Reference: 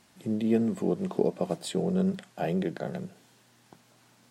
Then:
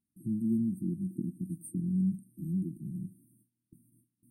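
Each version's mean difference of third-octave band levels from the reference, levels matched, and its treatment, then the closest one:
12.0 dB: noise gate with hold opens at −50 dBFS
dynamic equaliser 310 Hz, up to −7 dB, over −41 dBFS, Q 1.9
linear-phase brick-wall band-stop 350–8,400 Hz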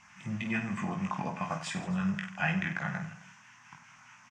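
8.5 dB: drawn EQ curve 160 Hz 0 dB, 280 Hz −11 dB, 410 Hz −24 dB, 1,000 Hz +10 dB, 2,600 Hz +12 dB, 4,100 Hz −11 dB, 6,100 Hz +6 dB, 11,000 Hz −23 dB
auto-filter notch sine 4.8 Hz 430–3,100 Hz
on a send: reverse bouncing-ball delay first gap 20 ms, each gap 1.5×, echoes 5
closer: second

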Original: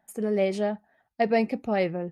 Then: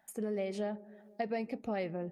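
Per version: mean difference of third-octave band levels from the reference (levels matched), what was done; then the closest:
2.5 dB: downward compressor, threshold −27 dBFS, peak gain reduction 9.5 dB
on a send: delay with a low-pass on its return 163 ms, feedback 56%, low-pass 500 Hz, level −16.5 dB
on the sum: one half of a high-frequency compander encoder only
level −5 dB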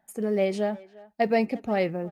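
1.0 dB: floating-point word with a short mantissa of 6 bits
far-end echo of a speakerphone 350 ms, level −20 dB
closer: second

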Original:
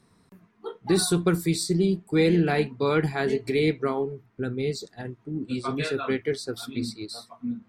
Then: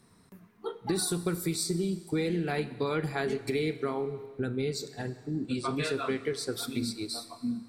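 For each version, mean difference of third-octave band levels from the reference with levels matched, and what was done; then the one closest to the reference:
6.0 dB: high-shelf EQ 8,300 Hz +7.5 dB
downward compressor, threshold −27 dBFS, peak gain reduction 10 dB
four-comb reverb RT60 1.8 s, combs from 30 ms, DRR 13.5 dB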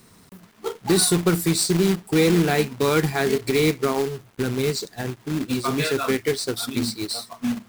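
8.5 dB: high-shelf EQ 5,300 Hz +6.5 dB
in parallel at +1.5 dB: downward compressor 16 to 1, threshold −29 dBFS, peak gain reduction 13 dB
on the sum: log-companded quantiser 4 bits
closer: first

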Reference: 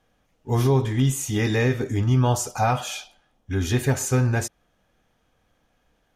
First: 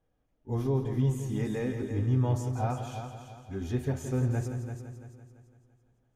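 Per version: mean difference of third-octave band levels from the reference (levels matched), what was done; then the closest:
6.5 dB: tilt shelving filter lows +6.5 dB, about 910 Hz
flanger 0.43 Hz, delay 2 ms, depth 3.5 ms, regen −67%
on a send: echo machine with several playback heads 169 ms, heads first and second, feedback 46%, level −10.5 dB
on the sum: level −9 dB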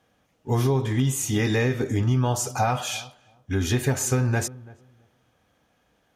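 2.5 dB: high-pass filter 75 Hz
feedback echo with a low-pass in the loop 334 ms, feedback 18%, low-pass 1,100 Hz, level −23 dB
downward compressor, threshold −20 dBFS, peak gain reduction 5.5 dB
level +2 dB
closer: second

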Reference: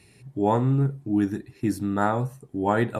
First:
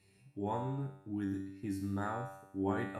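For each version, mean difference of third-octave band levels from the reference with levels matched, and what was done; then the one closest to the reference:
4.0 dB: tuned comb filter 97 Hz, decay 0.85 s, harmonics all, mix 90%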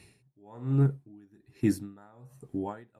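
9.0 dB: tremolo with a sine in dB 1.2 Hz, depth 33 dB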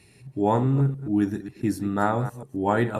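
2.0 dB: delay that plays each chunk backwards 135 ms, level −12.5 dB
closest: third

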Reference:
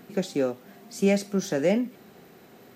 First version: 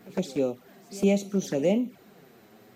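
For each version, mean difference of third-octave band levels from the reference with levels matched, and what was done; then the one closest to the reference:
2.5 dB: flanger swept by the level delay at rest 11.4 ms, full sweep at −22.5 dBFS
echo ahead of the sound 110 ms −20.5 dB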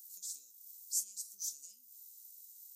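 21.0 dB: downward compressor 10 to 1, threshold −29 dBFS, peak gain reduction 13 dB
inverse Chebyshev high-pass filter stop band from 2,100 Hz, stop band 60 dB
level +10 dB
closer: first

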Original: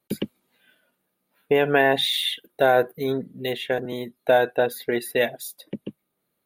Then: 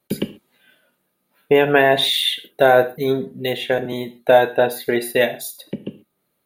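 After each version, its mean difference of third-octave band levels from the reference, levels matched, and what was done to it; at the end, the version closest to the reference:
2.0 dB: reverb whose tail is shaped and stops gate 160 ms falling, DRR 9 dB
level +4.5 dB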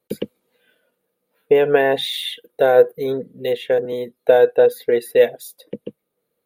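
5.0 dB: parametric band 480 Hz +14.5 dB 0.35 octaves
level −1.5 dB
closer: first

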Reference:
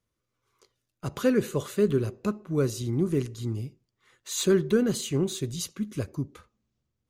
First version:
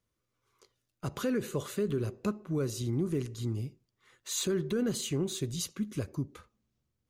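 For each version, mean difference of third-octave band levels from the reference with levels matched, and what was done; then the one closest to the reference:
2.5 dB: in parallel at −1 dB: downward compressor, threshold −30 dBFS, peak gain reduction 12.5 dB
on the sum: brickwall limiter −15.5 dBFS, peak gain reduction 6 dB
level −6.5 dB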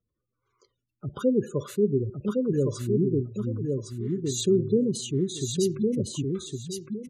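10.5 dB: gate on every frequency bin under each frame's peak −15 dB strong
on a send: repeating echo 1,111 ms, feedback 23%, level −3.5 dB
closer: first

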